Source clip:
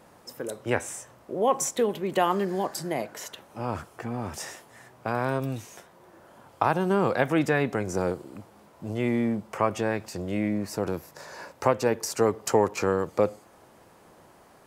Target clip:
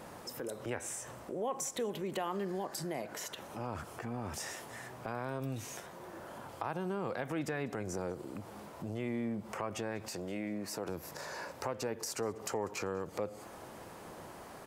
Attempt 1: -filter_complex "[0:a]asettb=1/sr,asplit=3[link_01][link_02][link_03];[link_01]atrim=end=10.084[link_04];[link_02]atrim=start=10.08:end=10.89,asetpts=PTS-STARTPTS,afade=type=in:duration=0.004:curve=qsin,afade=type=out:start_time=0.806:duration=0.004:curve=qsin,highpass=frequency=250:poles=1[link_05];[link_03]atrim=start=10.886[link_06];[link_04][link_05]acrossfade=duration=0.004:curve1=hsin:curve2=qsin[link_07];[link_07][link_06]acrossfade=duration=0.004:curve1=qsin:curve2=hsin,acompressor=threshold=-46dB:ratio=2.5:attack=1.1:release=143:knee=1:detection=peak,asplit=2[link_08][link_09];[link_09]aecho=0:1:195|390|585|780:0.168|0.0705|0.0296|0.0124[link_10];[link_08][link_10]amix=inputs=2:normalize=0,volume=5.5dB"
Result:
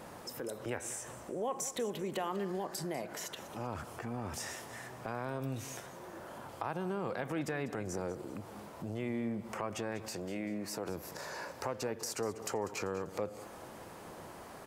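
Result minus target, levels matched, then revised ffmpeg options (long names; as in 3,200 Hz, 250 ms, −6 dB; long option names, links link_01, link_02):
echo-to-direct +9 dB
-filter_complex "[0:a]asettb=1/sr,asplit=3[link_01][link_02][link_03];[link_01]atrim=end=10.084[link_04];[link_02]atrim=start=10.08:end=10.89,asetpts=PTS-STARTPTS,afade=type=in:duration=0.004:curve=qsin,afade=type=out:start_time=0.806:duration=0.004:curve=qsin,highpass=frequency=250:poles=1[link_05];[link_03]atrim=start=10.886[link_06];[link_04][link_05]acrossfade=duration=0.004:curve1=hsin:curve2=qsin[link_07];[link_07][link_06]acrossfade=duration=0.004:curve1=qsin:curve2=hsin,acompressor=threshold=-46dB:ratio=2.5:attack=1.1:release=143:knee=1:detection=peak,asplit=2[link_08][link_09];[link_09]aecho=0:1:195|390|585:0.0596|0.025|0.0105[link_10];[link_08][link_10]amix=inputs=2:normalize=0,volume=5.5dB"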